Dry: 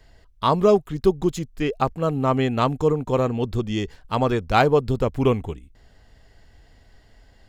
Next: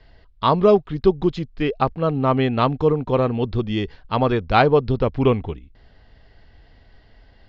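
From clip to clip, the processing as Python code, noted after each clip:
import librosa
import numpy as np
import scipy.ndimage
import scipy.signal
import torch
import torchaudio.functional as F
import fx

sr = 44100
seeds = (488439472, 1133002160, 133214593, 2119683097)

y = scipy.signal.sosfilt(scipy.signal.butter(6, 4800.0, 'lowpass', fs=sr, output='sos'), x)
y = y * 10.0 ** (2.0 / 20.0)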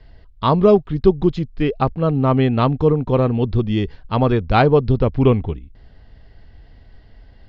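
y = fx.low_shelf(x, sr, hz=330.0, db=7.5)
y = y * 10.0 ** (-1.0 / 20.0)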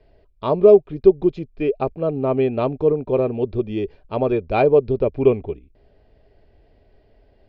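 y = fx.small_body(x, sr, hz=(410.0, 580.0, 2400.0), ring_ms=25, db=15)
y = y * 10.0 ** (-12.0 / 20.0)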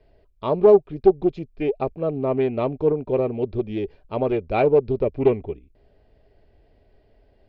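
y = fx.doppler_dist(x, sr, depth_ms=0.24)
y = y * 10.0 ** (-2.5 / 20.0)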